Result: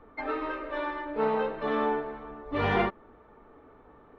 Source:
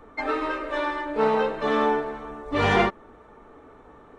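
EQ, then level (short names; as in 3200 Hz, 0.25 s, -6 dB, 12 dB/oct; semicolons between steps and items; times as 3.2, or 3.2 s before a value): air absorption 310 m; high shelf 6200 Hz +11.5 dB; -4.5 dB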